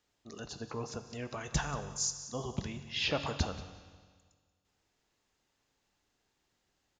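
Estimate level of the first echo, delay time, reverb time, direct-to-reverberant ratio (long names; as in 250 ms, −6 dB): −17.0 dB, 183 ms, 1.7 s, 9.0 dB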